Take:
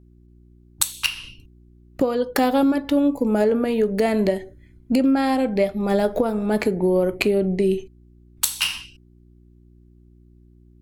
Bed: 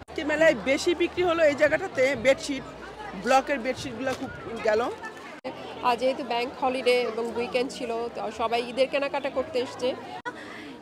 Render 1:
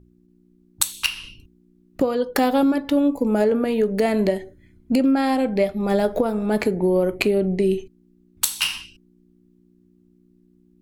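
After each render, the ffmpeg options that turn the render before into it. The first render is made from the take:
-af "bandreject=f=60:t=h:w=4,bandreject=f=120:t=h:w=4"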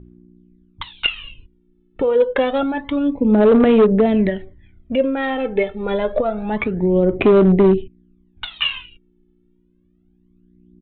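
-af "aphaser=in_gain=1:out_gain=1:delay=2.3:decay=0.7:speed=0.27:type=sinusoidal,aresample=8000,asoftclip=type=hard:threshold=-7.5dB,aresample=44100"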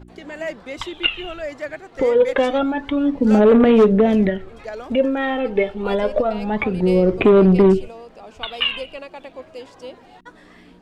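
-filter_complex "[1:a]volume=-8.5dB[a];[0:a][a]amix=inputs=2:normalize=0"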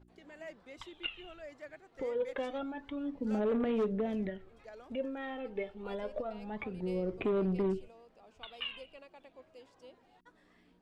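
-af "volume=-19dB"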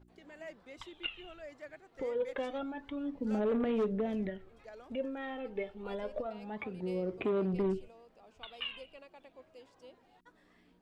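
-filter_complex "[0:a]asettb=1/sr,asplit=3[a][b][c];[a]atrim=end=6.264[d];[b]atrim=start=6.26:end=7.54,asetpts=PTS-STARTPTS,afade=t=in:d=0.004:c=qsin,afade=t=out:st=1.276:d=0.004:c=qsin,highpass=f=120:p=1[e];[c]atrim=start=7.536[f];[d][e]acrossfade=d=0.004:c1=hsin:c2=qsin[g];[g][f]acrossfade=d=0.004:c1=qsin:c2=hsin"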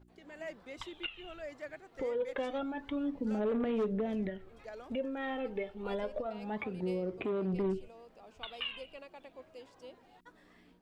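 -af "alimiter=level_in=7dB:limit=-24dB:level=0:latency=1:release=294,volume=-7dB,dynaudnorm=f=210:g=3:m=4dB"

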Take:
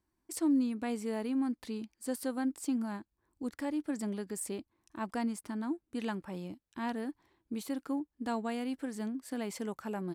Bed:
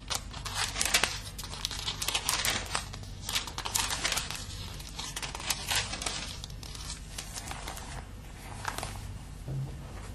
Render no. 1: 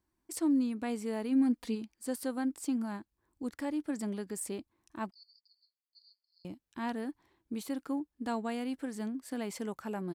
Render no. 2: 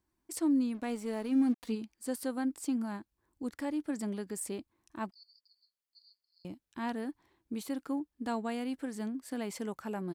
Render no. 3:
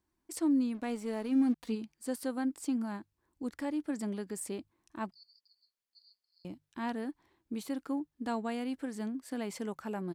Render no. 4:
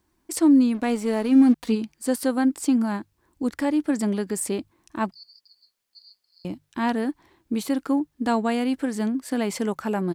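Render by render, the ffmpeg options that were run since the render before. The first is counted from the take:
-filter_complex "[0:a]asplit=3[a][b][c];[a]afade=t=out:st=1.31:d=0.02[d];[b]aecho=1:1:4.2:0.93,afade=t=in:st=1.31:d=0.02,afade=t=out:st=1.74:d=0.02[e];[c]afade=t=in:st=1.74:d=0.02[f];[d][e][f]amix=inputs=3:normalize=0,asettb=1/sr,asplit=3[g][h][i];[g]atrim=end=5.114[j];[h]atrim=start=5.11:end=6.45,asetpts=PTS-STARTPTS,afade=t=in:d=0.004:c=qsin,afade=t=out:st=1.336:d=0.004:c=qsin,asuperpass=centerf=4600:order=8:qfactor=6.3[k];[i]atrim=start=6.446[l];[j][k]acrossfade=d=0.004:c1=hsin:c2=qsin[m];[m][l]acrossfade=d=0.004:c1=qsin:c2=hsin"
-filter_complex "[0:a]asettb=1/sr,asplit=3[a][b][c];[a]atrim=end=0.744[d];[b]atrim=start=0.74:end=1.72,asetpts=PTS-STARTPTS,afade=t=in:d=0.004:c=qsin,afade=t=out:st=0.976:d=0.004:c=qsin,aeval=exprs='sgn(val(0))*max(abs(val(0))-0.00224,0)':c=same[e];[c]atrim=start=1.716[f];[d][e]acrossfade=d=0.004:c1=hsin:c2=qsin[g];[g][f]acrossfade=d=0.004:c1=qsin:c2=hsin"
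-af "highshelf=f=9.4k:g=-4,bandreject=f=50:t=h:w=6,bandreject=f=100:t=h:w=6,bandreject=f=150:t=h:w=6"
-af "volume=12dB"

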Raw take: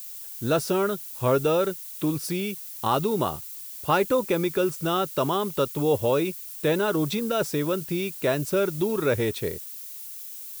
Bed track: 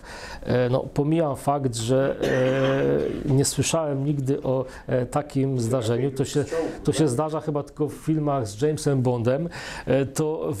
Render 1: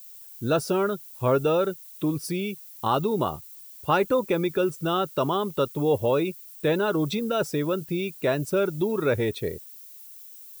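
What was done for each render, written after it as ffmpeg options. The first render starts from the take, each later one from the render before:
-af "afftdn=nr=9:nf=-39"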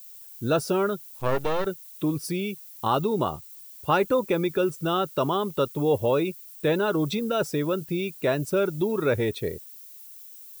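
-filter_complex "[0:a]asettb=1/sr,asplit=3[a][b][c];[a]atrim=end=1.204[d];[b]atrim=start=1.2:end=1.66,asetpts=PTS-STARTPTS,afade=t=in:d=0.004:c=qsin,afade=t=out:st=0.456:d=0.004:c=qsin,aeval=exprs='max(val(0),0)':c=same[e];[c]atrim=start=1.656[f];[d][e]acrossfade=d=0.004:c1=hsin:c2=qsin[g];[g][f]acrossfade=d=0.004:c1=qsin:c2=hsin,asettb=1/sr,asplit=3[h][i][j];[h]atrim=end=3.074[k];[i]atrim=start=3.07:end=3.5,asetpts=PTS-STARTPTS,afade=t=in:d=0.004:c=qsin,afade=t=out:st=0.426:d=0.004:c=qsin,equalizer=f=13k:w=3.1:g=-9.5[l];[j]atrim=start=3.496[m];[k][l]acrossfade=d=0.004:c1=hsin:c2=qsin[n];[n][m]acrossfade=d=0.004:c1=qsin:c2=hsin"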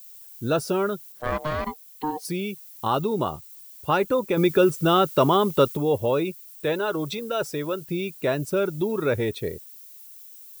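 -filter_complex "[0:a]asettb=1/sr,asplit=3[a][b][c];[a]atrim=end=1.124[d];[b]atrim=start=1.12:end=2.25,asetpts=PTS-STARTPTS,afade=t=in:d=0.004:c=qsin,afade=t=out:st=1.126:d=0.004:c=qsin,aeval=exprs='val(0)*sin(2*PI*610*n/s)':c=same[e];[c]atrim=start=2.246[f];[d][e]acrossfade=d=0.004:c1=hsin:c2=qsin[g];[g][f]acrossfade=d=0.004:c1=qsin:c2=hsin,asettb=1/sr,asplit=3[h][i][j];[h]atrim=end=4.374[k];[i]atrim=start=4.37:end=5.77,asetpts=PTS-STARTPTS,afade=t=in:d=0.004:c=qsin,afade=t=out:st=1.396:d=0.004:c=qsin,acontrast=59[l];[j]atrim=start=5.766[m];[k][l]acrossfade=d=0.004:c1=hsin:c2=qsin[n];[n][m]acrossfade=d=0.004:c1=qsin:c2=hsin,asettb=1/sr,asplit=3[o][p][q];[o]atrim=end=6.354[r];[p]atrim=start=6.35:end=7.88,asetpts=PTS-STARTPTS,afade=t=in:d=0.004:c=qsin,afade=t=out:st=1.526:d=0.004:c=qsin,equalizer=f=210:w=1.3:g=-8[s];[q]atrim=start=7.876[t];[r][s]acrossfade=d=0.004:c1=hsin:c2=qsin[u];[u][t]acrossfade=d=0.004:c1=qsin:c2=hsin"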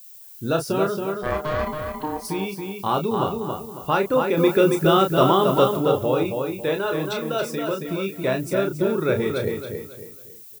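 -filter_complex "[0:a]asplit=2[a][b];[b]adelay=31,volume=-6dB[c];[a][c]amix=inputs=2:normalize=0,asplit=2[d][e];[e]adelay=275,lowpass=f=4.3k:p=1,volume=-4.5dB,asplit=2[f][g];[g]adelay=275,lowpass=f=4.3k:p=1,volume=0.35,asplit=2[h][i];[i]adelay=275,lowpass=f=4.3k:p=1,volume=0.35,asplit=2[j][k];[k]adelay=275,lowpass=f=4.3k:p=1,volume=0.35[l];[d][f][h][j][l]amix=inputs=5:normalize=0"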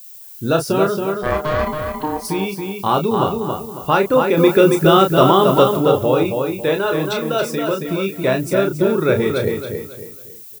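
-af "volume=5.5dB,alimiter=limit=-1dB:level=0:latency=1"

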